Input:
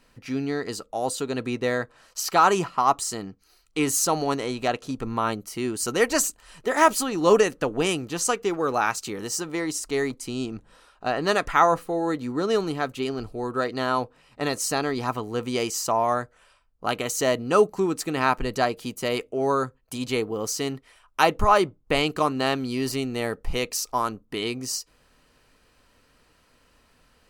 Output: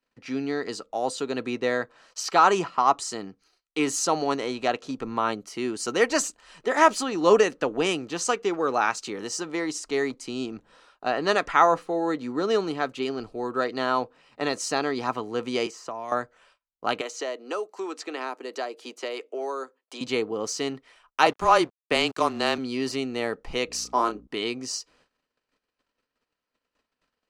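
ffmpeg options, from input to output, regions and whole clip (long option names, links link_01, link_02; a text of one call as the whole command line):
ffmpeg -i in.wav -filter_complex "[0:a]asettb=1/sr,asplit=3[link_01][link_02][link_03];[link_01]atrim=end=15.664[link_04];[link_02]atrim=start=15.66:end=16.12,asetpts=PTS-STARTPTS,afade=type=in:duration=0.004:curve=qsin,afade=type=out:start_time=0.456:duration=0.004:curve=qsin,bandreject=frequency=870:width=21,acrossover=split=330|2200[link_05][link_06][link_07];[link_05]acompressor=threshold=-44dB:ratio=4[link_08];[link_06]acompressor=threshold=-35dB:ratio=4[link_09];[link_07]acompressor=threshold=-44dB:ratio=4[link_10];[link_08][link_09][link_10]amix=inputs=3:normalize=0[link_11];[link_03]atrim=start=16.116[link_12];[link_04][link_11]acrossfade=duration=0.004:curve1=hsin:curve2=qsin[link_13];[link_13][link_12]acrossfade=duration=0.004:curve1=qsin:curve2=hsin,asettb=1/sr,asplit=3[link_14][link_15][link_16];[link_14]atrim=end=17.014[link_17];[link_15]atrim=start=17.01:end=20.01,asetpts=PTS-STARTPTS,afade=type=in:duration=0.004:curve=qsin,afade=type=out:start_time=2.996:duration=0.004:curve=qsin,highpass=frequency=320:width=0.5412,highpass=frequency=320:width=1.3066,acrossover=split=560|6500[link_18][link_19][link_20];[link_18]acompressor=threshold=-34dB:ratio=4[link_21];[link_19]acompressor=threshold=-34dB:ratio=4[link_22];[link_20]acompressor=threshold=-49dB:ratio=4[link_23];[link_21][link_22][link_23]amix=inputs=3:normalize=0[link_24];[link_16]atrim=start=20.006[link_25];[link_17][link_24]acrossfade=duration=0.004:curve1=hsin:curve2=qsin[link_26];[link_26][link_25]acrossfade=duration=0.004:curve1=qsin:curve2=hsin,asettb=1/sr,asplit=3[link_27][link_28][link_29];[link_27]atrim=end=21.264[link_30];[link_28]atrim=start=21.26:end=22.58,asetpts=PTS-STARTPTS,afade=type=in:duration=0.004:curve=qsin,afade=type=out:start_time=1.316:duration=0.004:curve=qsin,highshelf=frequency=6600:gain=11.5,afreqshift=-22,aeval=exprs='sgn(val(0))*max(abs(val(0))-0.0126,0)':channel_layout=same[link_31];[link_29]atrim=start=22.576[link_32];[link_30][link_31]acrossfade=duration=0.004:curve1=hsin:curve2=qsin[link_33];[link_33][link_32]acrossfade=duration=0.004:curve1=qsin:curve2=hsin,asettb=1/sr,asplit=3[link_34][link_35][link_36];[link_34]atrim=end=23.674[link_37];[link_35]atrim=start=23.67:end=24.27,asetpts=PTS-STARTPTS,afade=type=in:duration=0.004:curve=qsin,afade=type=out:start_time=0.596:duration=0.004:curve=qsin,highpass=frequency=290:width_type=q:width=1.7,aeval=exprs='val(0)+0.00708*(sin(2*PI*60*n/s)+sin(2*PI*2*60*n/s)/2+sin(2*PI*3*60*n/s)/3+sin(2*PI*4*60*n/s)/4+sin(2*PI*5*60*n/s)/5)':channel_layout=same,asplit=2[link_38][link_39];[link_39]adelay=29,volume=-7dB[link_40];[link_38][link_40]amix=inputs=2:normalize=0,atrim=end_sample=26460[link_41];[link_36]atrim=start=24.266[link_42];[link_37][link_41]acrossfade=duration=0.004:curve1=hsin:curve2=qsin[link_43];[link_43][link_42]acrossfade=duration=0.004:curve1=qsin:curve2=hsin,agate=range=-23dB:threshold=-57dB:ratio=16:detection=peak,acrossover=split=190 7800:gain=0.251 1 0.0794[link_44][link_45][link_46];[link_44][link_45][link_46]amix=inputs=3:normalize=0" out.wav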